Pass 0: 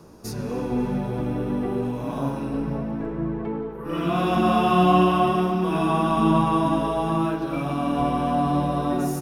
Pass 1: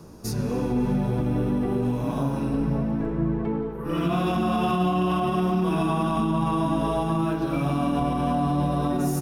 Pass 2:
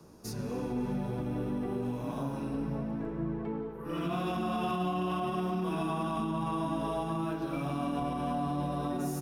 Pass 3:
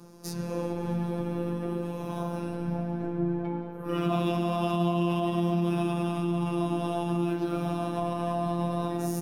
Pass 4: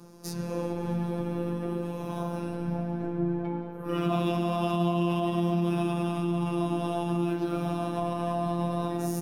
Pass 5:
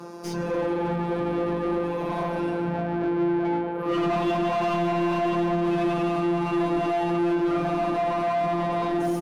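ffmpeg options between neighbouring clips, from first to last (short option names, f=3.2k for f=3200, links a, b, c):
-af "bass=f=250:g=5,treble=f=4k:g=3,alimiter=limit=-15.5dB:level=0:latency=1:release=70"
-filter_complex "[0:a]lowshelf=f=150:g=-6,acrossover=split=140|1300|6300[a][b][c][d];[d]asoftclip=type=hard:threshold=-36dB[e];[a][b][c][e]amix=inputs=4:normalize=0,volume=-7.5dB"
-filter_complex "[0:a]acrossover=split=600[a][b];[a]crystalizer=i=7:c=0[c];[c][b]amix=inputs=2:normalize=0,afftfilt=real='hypot(re,im)*cos(PI*b)':imag='0':win_size=1024:overlap=0.75,volume=7dB"
-af anull
-filter_complex "[0:a]asplit=2[a][b];[b]highpass=f=720:p=1,volume=29dB,asoftclip=type=tanh:threshold=-12.5dB[c];[a][c]amix=inputs=2:normalize=0,lowpass=f=1.5k:p=1,volume=-6dB,asplit=2[d][e];[e]adelay=20,volume=-10dB[f];[d][f]amix=inputs=2:normalize=0,volume=-4dB"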